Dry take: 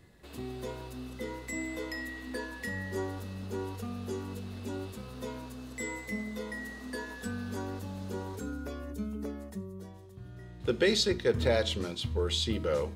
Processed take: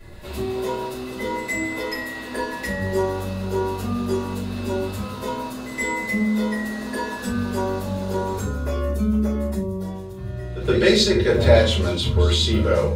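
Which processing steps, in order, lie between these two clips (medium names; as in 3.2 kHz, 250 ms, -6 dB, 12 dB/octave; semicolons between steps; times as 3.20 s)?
in parallel at 0 dB: compression, threshold -39 dBFS, peak gain reduction 16.5 dB; on the sum: pre-echo 121 ms -15 dB; simulated room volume 170 m³, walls furnished, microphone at 5.3 m; trim -1.5 dB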